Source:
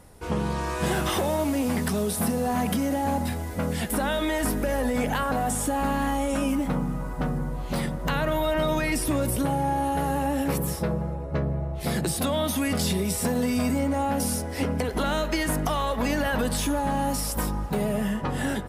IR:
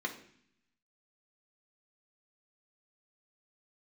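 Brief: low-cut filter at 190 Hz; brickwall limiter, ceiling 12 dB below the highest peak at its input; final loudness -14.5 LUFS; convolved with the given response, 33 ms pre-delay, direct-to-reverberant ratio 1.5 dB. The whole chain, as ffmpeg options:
-filter_complex "[0:a]highpass=190,alimiter=level_in=1.26:limit=0.0631:level=0:latency=1,volume=0.794,asplit=2[s0][s1];[1:a]atrim=start_sample=2205,adelay=33[s2];[s1][s2]afir=irnorm=-1:irlink=0,volume=0.531[s3];[s0][s3]amix=inputs=2:normalize=0,volume=7.08"

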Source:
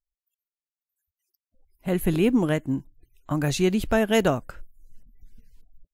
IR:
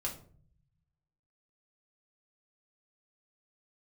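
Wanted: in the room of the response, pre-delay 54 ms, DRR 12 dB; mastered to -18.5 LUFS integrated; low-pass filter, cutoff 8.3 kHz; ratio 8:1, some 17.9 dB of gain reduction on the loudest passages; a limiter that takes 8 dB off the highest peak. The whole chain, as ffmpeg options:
-filter_complex "[0:a]lowpass=8300,acompressor=threshold=0.0178:ratio=8,alimiter=level_in=1.88:limit=0.0631:level=0:latency=1,volume=0.531,asplit=2[s0][s1];[1:a]atrim=start_sample=2205,adelay=54[s2];[s1][s2]afir=irnorm=-1:irlink=0,volume=0.211[s3];[s0][s3]amix=inputs=2:normalize=0,volume=13.3"

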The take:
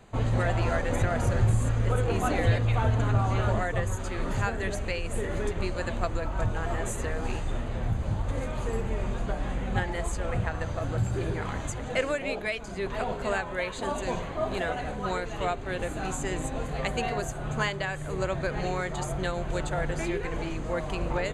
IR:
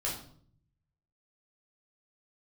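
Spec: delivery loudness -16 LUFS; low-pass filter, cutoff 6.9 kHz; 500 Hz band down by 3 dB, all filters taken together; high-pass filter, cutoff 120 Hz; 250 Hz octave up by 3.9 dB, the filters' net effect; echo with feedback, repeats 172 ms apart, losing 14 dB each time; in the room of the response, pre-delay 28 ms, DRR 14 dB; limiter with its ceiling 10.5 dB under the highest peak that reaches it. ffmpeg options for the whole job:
-filter_complex "[0:a]highpass=120,lowpass=6900,equalizer=f=250:t=o:g=7.5,equalizer=f=500:t=o:g=-6,alimiter=limit=0.0668:level=0:latency=1,aecho=1:1:172|344:0.2|0.0399,asplit=2[s0][s1];[1:a]atrim=start_sample=2205,adelay=28[s2];[s1][s2]afir=irnorm=-1:irlink=0,volume=0.126[s3];[s0][s3]amix=inputs=2:normalize=0,volume=7.08"

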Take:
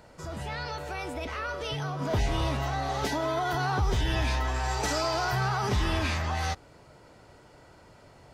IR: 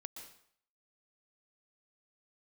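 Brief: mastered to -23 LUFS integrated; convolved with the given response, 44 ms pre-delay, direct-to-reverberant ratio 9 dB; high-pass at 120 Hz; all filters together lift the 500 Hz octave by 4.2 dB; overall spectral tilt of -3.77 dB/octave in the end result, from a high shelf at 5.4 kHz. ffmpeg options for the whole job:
-filter_complex "[0:a]highpass=120,equalizer=f=500:t=o:g=6,highshelf=f=5400:g=-4,asplit=2[s0][s1];[1:a]atrim=start_sample=2205,adelay=44[s2];[s1][s2]afir=irnorm=-1:irlink=0,volume=0.596[s3];[s0][s3]amix=inputs=2:normalize=0,volume=2"

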